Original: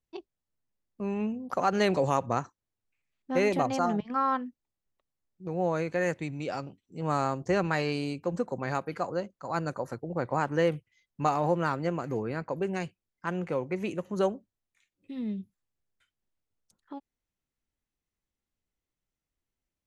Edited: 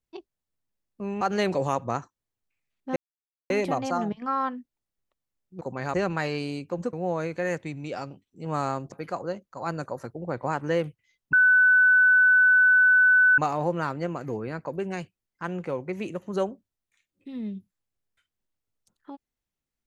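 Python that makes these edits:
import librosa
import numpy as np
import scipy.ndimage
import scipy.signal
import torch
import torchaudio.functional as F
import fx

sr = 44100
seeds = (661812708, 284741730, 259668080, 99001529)

y = fx.edit(x, sr, fx.cut(start_s=1.21, length_s=0.42),
    fx.insert_silence(at_s=3.38, length_s=0.54),
    fx.swap(start_s=5.49, length_s=1.99, other_s=8.47, other_length_s=0.33),
    fx.insert_tone(at_s=11.21, length_s=2.05, hz=1500.0, db=-14.5), tone=tone)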